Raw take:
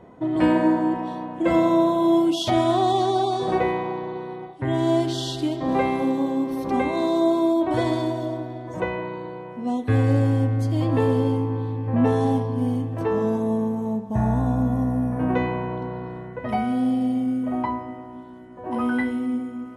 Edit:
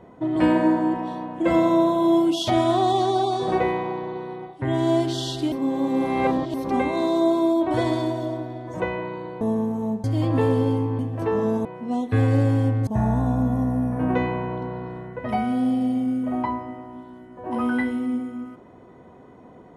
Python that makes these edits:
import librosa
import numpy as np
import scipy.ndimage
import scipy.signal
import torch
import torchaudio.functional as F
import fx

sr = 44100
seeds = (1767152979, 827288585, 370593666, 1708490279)

y = fx.edit(x, sr, fx.reverse_span(start_s=5.52, length_s=1.02),
    fx.swap(start_s=9.41, length_s=1.22, other_s=13.44, other_length_s=0.63),
    fx.cut(start_s=11.58, length_s=1.2), tone=tone)